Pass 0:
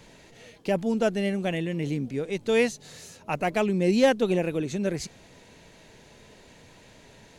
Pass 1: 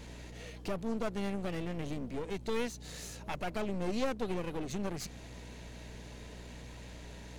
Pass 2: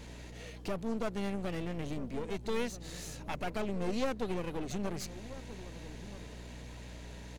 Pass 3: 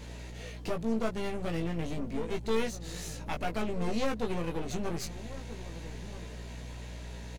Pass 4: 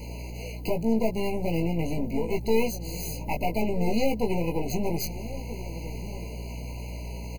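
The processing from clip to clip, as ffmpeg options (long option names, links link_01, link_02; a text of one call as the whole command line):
ffmpeg -i in.wav -af "acompressor=threshold=-36dB:ratio=2,aeval=exprs='val(0)+0.00398*(sin(2*PI*60*n/s)+sin(2*PI*2*60*n/s)/2+sin(2*PI*3*60*n/s)/3+sin(2*PI*4*60*n/s)/4+sin(2*PI*5*60*n/s)/5)':channel_layout=same,aeval=exprs='clip(val(0),-1,0.00562)':channel_layout=same,volume=1dB" out.wav
ffmpeg -i in.wav -filter_complex "[0:a]asplit=2[link_01][link_02];[link_02]adelay=1283,volume=-14dB,highshelf=frequency=4000:gain=-28.9[link_03];[link_01][link_03]amix=inputs=2:normalize=0" out.wav
ffmpeg -i in.wav -filter_complex "[0:a]asplit=2[link_01][link_02];[link_02]adelay=18,volume=-4dB[link_03];[link_01][link_03]amix=inputs=2:normalize=0,volume=1.5dB" out.wav
ffmpeg -i in.wav -filter_complex "[0:a]acrossover=split=1100[link_01][link_02];[link_02]aexciter=amount=3.7:drive=9.1:freq=12000[link_03];[link_01][link_03]amix=inputs=2:normalize=0,afftfilt=real='re*eq(mod(floor(b*sr/1024/1000),2),0)':imag='im*eq(mod(floor(b*sr/1024/1000),2),0)':win_size=1024:overlap=0.75,volume=6.5dB" out.wav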